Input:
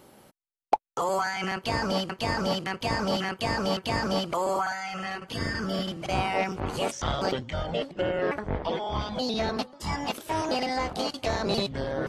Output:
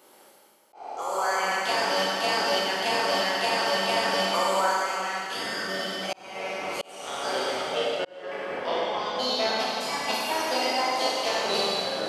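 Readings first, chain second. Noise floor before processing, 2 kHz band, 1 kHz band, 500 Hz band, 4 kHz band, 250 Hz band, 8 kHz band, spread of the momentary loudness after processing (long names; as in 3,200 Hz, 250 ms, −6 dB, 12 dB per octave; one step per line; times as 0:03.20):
−56 dBFS, +4.5 dB, +3.0 dB, +1.5 dB, +6.0 dB, −6.0 dB, +6.0 dB, 9 LU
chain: peak hold with a decay on every bin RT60 1.11 s
reverb reduction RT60 0.61 s
high-pass filter 410 Hz 12 dB per octave
noise gate −29 dBFS, range −7 dB
high-shelf EQ 5,400 Hz +3 dB
downward compressor 2 to 1, threshold −34 dBFS, peak gain reduction 10.5 dB
four-comb reverb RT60 2.7 s, combs from 32 ms, DRR −3.5 dB
volume swells 721 ms
level +4.5 dB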